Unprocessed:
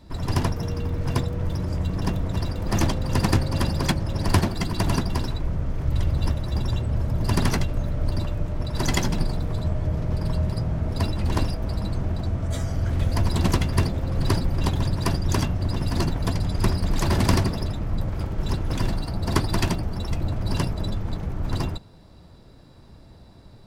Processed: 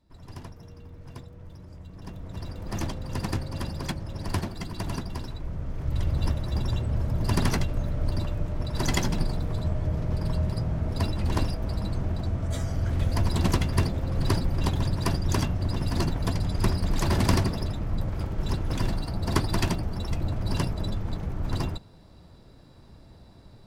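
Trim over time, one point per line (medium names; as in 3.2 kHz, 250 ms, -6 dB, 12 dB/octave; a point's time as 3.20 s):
1.89 s -18.5 dB
2.50 s -9 dB
5.30 s -9 dB
6.20 s -2.5 dB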